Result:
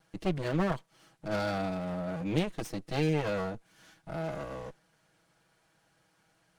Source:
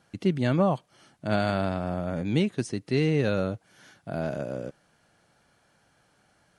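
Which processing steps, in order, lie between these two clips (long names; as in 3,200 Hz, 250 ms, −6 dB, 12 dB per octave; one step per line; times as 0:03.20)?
lower of the sound and its delayed copy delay 6.2 ms
level −3 dB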